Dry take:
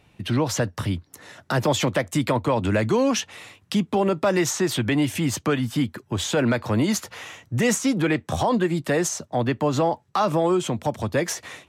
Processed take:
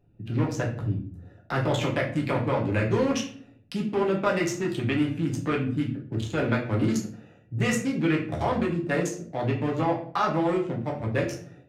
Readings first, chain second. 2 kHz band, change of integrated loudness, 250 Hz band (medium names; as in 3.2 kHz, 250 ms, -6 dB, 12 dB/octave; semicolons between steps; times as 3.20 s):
-3.0 dB, -3.5 dB, -3.5 dB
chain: local Wiener filter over 41 samples; dynamic bell 2.2 kHz, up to +6 dB, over -42 dBFS, Q 0.74; simulated room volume 50 m³, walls mixed, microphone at 0.78 m; trim -7.5 dB